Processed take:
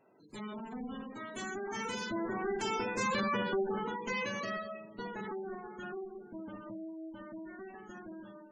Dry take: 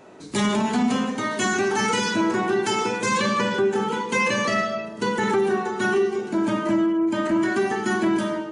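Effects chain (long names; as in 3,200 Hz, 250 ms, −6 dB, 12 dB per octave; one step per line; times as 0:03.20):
one-sided soft clipper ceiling −25.5 dBFS
source passing by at 0:03.19, 8 m/s, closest 6.4 metres
gate on every frequency bin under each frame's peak −20 dB strong
level −7 dB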